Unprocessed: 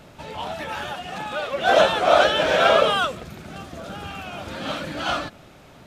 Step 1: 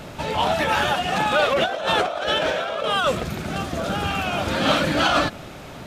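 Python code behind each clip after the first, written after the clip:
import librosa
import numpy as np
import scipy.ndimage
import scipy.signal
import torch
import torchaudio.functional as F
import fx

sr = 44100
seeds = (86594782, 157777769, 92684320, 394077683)

y = fx.over_compress(x, sr, threshold_db=-26.0, ratio=-1.0)
y = y * librosa.db_to_amplitude(5.0)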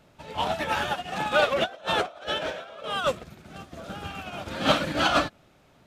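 y = fx.upward_expand(x, sr, threshold_db=-30.0, expansion=2.5)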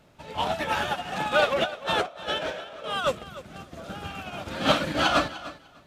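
y = fx.echo_feedback(x, sr, ms=299, feedback_pct=16, wet_db=-16.0)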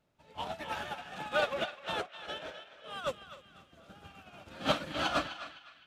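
y = fx.echo_banded(x, sr, ms=255, feedback_pct=56, hz=2400.0, wet_db=-5.5)
y = fx.upward_expand(y, sr, threshold_db=-39.0, expansion=1.5)
y = y * librosa.db_to_amplitude(-7.0)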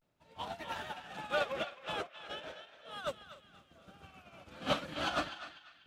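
y = fx.vibrato(x, sr, rate_hz=0.4, depth_cents=72.0)
y = y * librosa.db_to_amplitude(-3.0)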